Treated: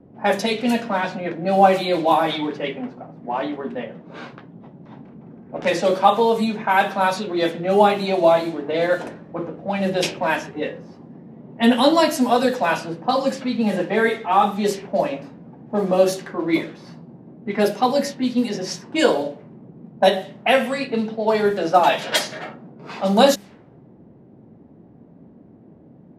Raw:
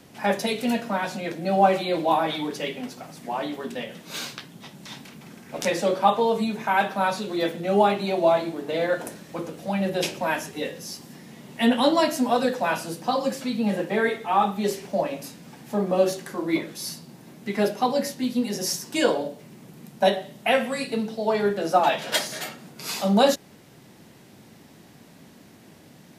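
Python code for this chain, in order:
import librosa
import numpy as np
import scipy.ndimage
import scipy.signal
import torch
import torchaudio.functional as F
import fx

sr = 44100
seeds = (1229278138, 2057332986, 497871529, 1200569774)

y = fx.env_lowpass(x, sr, base_hz=470.0, full_db=-19.0)
y = fx.hum_notches(y, sr, base_hz=50, count=4)
y = F.gain(torch.from_numpy(y), 4.5).numpy()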